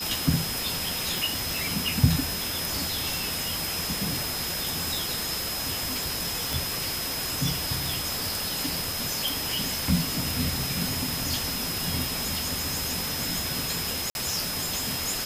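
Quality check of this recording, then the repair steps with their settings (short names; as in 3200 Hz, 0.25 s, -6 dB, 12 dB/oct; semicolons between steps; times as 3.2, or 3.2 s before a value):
tone 5100 Hz -33 dBFS
1.18 pop
6.53 pop
14.1–14.15 gap 51 ms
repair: de-click; notch 5100 Hz, Q 30; interpolate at 14.1, 51 ms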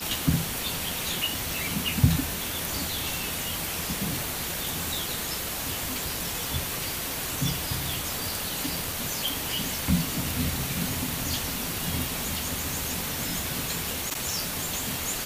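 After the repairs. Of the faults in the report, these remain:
none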